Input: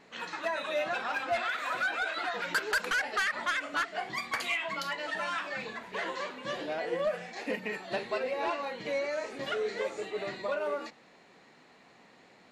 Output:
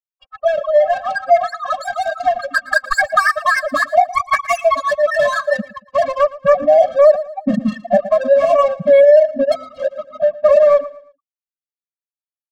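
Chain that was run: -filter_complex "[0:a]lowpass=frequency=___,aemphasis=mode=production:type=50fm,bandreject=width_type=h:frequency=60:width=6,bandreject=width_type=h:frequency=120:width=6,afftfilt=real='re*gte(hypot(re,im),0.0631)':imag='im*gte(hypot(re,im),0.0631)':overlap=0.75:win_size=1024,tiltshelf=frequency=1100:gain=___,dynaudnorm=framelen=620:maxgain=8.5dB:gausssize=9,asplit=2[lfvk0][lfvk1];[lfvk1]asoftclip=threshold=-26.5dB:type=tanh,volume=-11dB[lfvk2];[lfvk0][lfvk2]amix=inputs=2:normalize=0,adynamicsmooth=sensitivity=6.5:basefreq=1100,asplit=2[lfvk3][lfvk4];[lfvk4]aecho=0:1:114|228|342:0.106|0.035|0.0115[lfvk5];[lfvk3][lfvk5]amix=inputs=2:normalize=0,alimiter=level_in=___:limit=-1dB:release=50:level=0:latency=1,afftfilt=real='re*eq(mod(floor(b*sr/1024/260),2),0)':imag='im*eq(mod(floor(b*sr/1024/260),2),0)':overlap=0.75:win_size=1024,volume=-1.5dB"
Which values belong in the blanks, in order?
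1800, 6.5, 17dB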